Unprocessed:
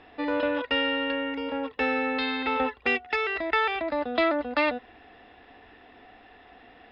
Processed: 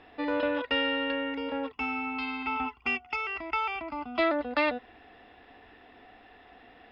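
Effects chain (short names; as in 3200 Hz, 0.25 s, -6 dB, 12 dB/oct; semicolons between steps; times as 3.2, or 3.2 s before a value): 1.72–4.19 fixed phaser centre 2600 Hz, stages 8; gain -2 dB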